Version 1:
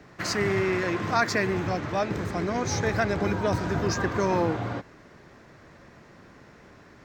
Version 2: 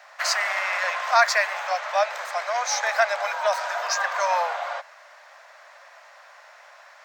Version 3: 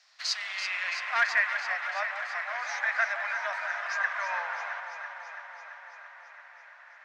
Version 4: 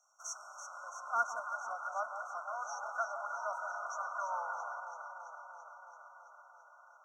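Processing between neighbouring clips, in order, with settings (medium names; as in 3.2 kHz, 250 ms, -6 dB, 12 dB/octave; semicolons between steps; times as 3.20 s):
steep high-pass 580 Hz 72 dB/octave; trim +6.5 dB
one-sided wavefolder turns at -12.5 dBFS; band-pass sweep 5 kHz -> 1.8 kHz, 0.03–1.25 s; echo whose repeats swap between lows and highs 167 ms, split 1 kHz, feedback 84%, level -7 dB; trim -1 dB
brick-wall FIR band-stop 1.5–5.5 kHz; trim -3 dB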